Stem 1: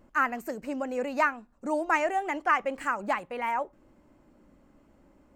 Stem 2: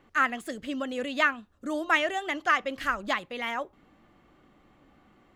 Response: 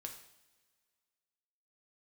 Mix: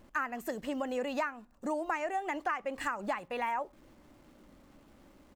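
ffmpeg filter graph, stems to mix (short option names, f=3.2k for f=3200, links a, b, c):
-filter_complex "[0:a]volume=0.5dB,asplit=2[a][b];[1:a]equalizer=f=350:w=1.5:g=-8,acompressor=threshold=-32dB:ratio=6,acrusher=bits=9:mix=0:aa=0.000001,adelay=0.9,volume=-7dB[c];[b]apad=whole_len=236056[d];[c][d]sidechaincompress=threshold=-28dB:ratio=8:attack=16:release=266[e];[a][e]amix=inputs=2:normalize=0,acompressor=threshold=-30dB:ratio=6"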